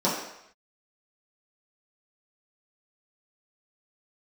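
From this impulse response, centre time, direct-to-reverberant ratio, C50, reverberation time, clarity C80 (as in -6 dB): 50 ms, -9.0 dB, 3.0 dB, 0.75 s, 6.0 dB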